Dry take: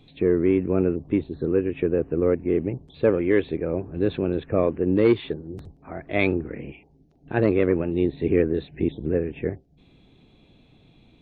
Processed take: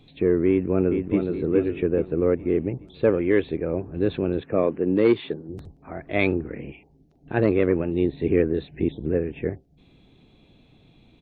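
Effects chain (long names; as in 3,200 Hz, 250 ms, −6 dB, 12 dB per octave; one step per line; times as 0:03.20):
0:00.49–0:01.28: delay throw 420 ms, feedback 45%, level −5.5 dB
0:04.41–0:05.49: high-pass filter 140 Hz 12 dB per octave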